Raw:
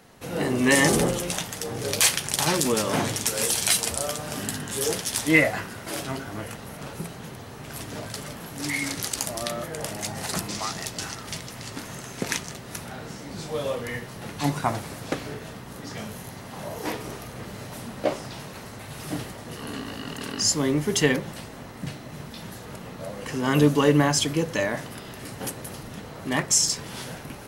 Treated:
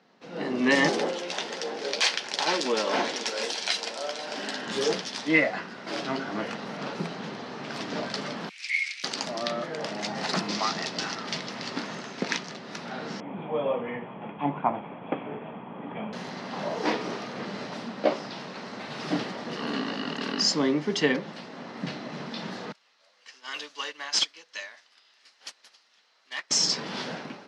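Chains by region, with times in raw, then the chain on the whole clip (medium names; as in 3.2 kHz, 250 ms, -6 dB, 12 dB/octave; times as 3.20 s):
0.89–4.66 s: high-pass 360 Hz + band-stop 1.2 kHz, Q 10 + delay 488 ms -16 dB
8.49–9.04 s: ladder high-pass 2.2 kHz, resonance 75% + peaking EQ 9.1 kHz +10.5 dB 1 oct
13.20–16.13 s: rippled Chebyshev low-pass 3.4 kHz, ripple 9 dB + tilt EQ -2.5 dB/octave
22.72–26.51 s: differentiator + overdrive pedal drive 19 dB, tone 6.5 kHz, clips at -11 dBFS + upward expansion 2.5:1, over -36 dBFS
whole clip: elliptic band-pass 190–5000 Hz, stop band 80 dB; level rider gain up to 13 dB; trim -8 dB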